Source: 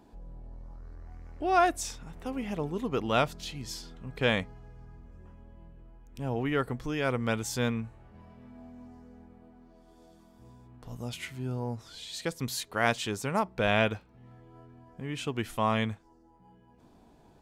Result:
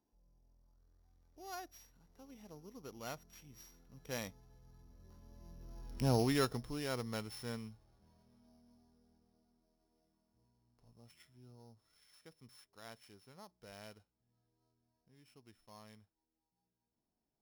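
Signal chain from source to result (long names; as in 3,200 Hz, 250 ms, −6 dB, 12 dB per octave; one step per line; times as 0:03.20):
samples sorted by size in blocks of 8 samples
source passing by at 0:05.93, 10 m/s, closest 1.7 metres
level +5 dB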